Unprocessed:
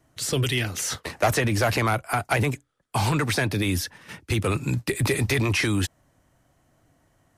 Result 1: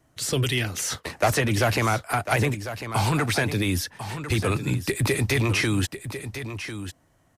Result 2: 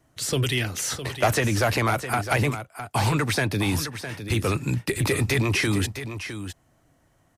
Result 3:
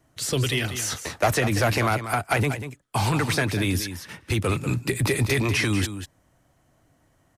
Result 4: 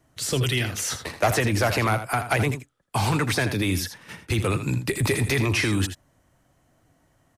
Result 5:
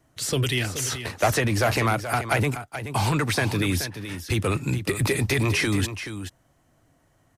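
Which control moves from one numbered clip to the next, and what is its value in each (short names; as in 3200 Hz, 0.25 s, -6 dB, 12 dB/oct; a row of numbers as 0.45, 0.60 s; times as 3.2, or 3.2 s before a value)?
echo, time: 1048, 659, 191, 81, 428 ms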